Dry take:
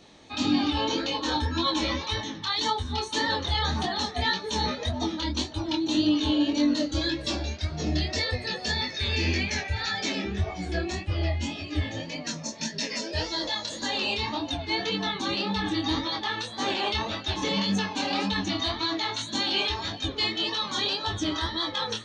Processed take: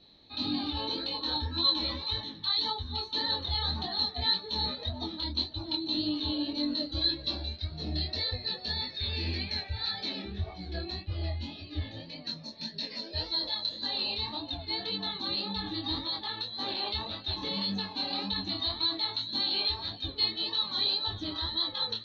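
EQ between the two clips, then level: dynamic bell 930 Hz, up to +4 dB, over -39 dBFS, Q 0.97; four-pole ladder low-pass 4.2 kHz, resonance 90%; tilt EQ -2 dB/octave; 0.0 dB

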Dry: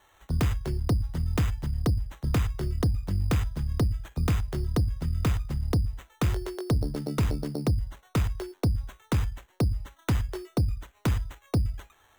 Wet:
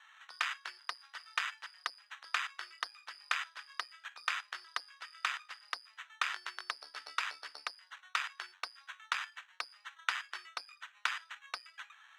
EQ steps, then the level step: high-pass 1.4 kHz 24 dB/octave; tape spacing loss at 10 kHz 24 dB; band-stop 2.1 kHz, Q 18; +11.5 dB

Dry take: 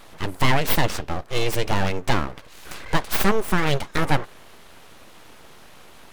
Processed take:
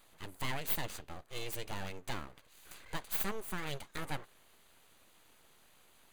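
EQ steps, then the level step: pre-emphasis filter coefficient 0.8; treble shelf 4.2 kHz -7 dB; band-stop 5.4 kHz, Q 5.9; -6.0 dB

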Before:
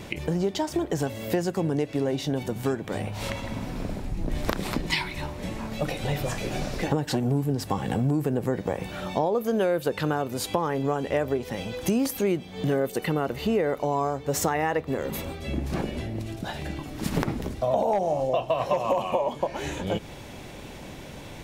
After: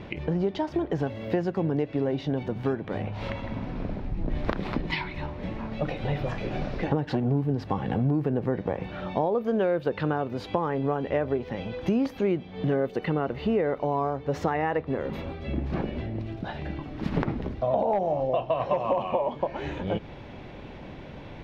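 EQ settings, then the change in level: distance through air 290 m; 0.0 dB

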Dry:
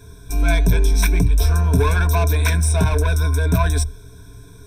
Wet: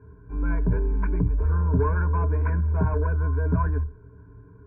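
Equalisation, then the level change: high-pass 51 Hz; Butterworth band-stop 700 Hz, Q 5.3; inverse Chebyshev low-pass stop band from 3.6 kHz, stop band 50 dB; -5.0 dB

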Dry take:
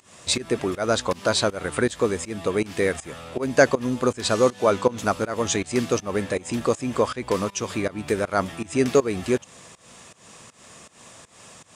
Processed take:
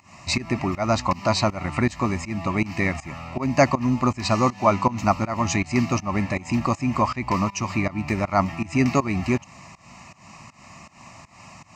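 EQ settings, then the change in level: tone controls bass +4 dB, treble -10 dB; bass shelf 230 Hz -3.5 dB; static phaser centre 2.3 kHz, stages 8; +7.0 dB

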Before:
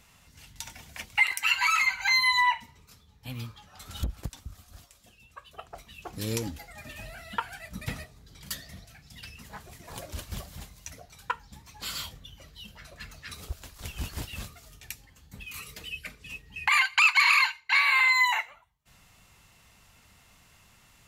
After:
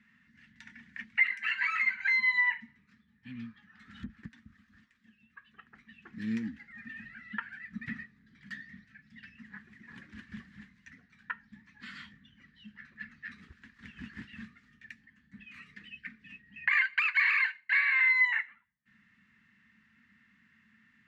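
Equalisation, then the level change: two resonant band-passes 630 Hz, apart 3 oct; distance through air 64 m; +6.5 dB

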